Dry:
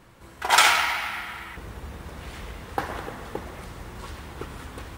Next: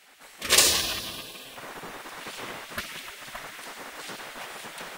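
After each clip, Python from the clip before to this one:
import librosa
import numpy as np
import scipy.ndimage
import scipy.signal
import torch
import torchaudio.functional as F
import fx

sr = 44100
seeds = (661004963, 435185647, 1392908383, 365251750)

y = fx.spec_gate(x, sr, threshold_db=-15, keep='weak')
y = y * 10.0 ** (6.5 / 20.0)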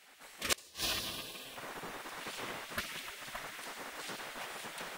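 y = fx.gate_flip(x, sr, shuts_db=-11.0, range_db=-32)
y = y * 10.0 ** (-4.5 / 20.0)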